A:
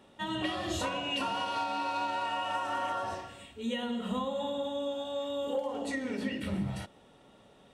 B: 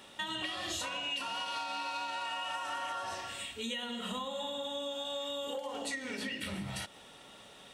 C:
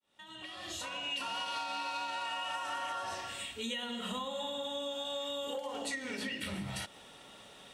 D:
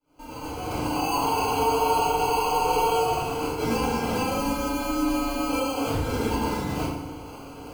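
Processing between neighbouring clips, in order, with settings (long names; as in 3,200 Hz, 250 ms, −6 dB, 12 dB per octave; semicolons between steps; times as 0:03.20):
tilt shelving filter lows −7.5 dB, about 1,100 Hz; downward compressor 5 to 1, threshold −42 dBFS, peak gain reduction 14.5 dB; level +6 dB
fade in at the beginning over 1.23 s
decimation without filtering 24×; feedback delay network reverb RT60 1.1 s, low-frequency decay 1.3×, high-frequency decay 0.65×, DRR −8.5 dB; level +3 dB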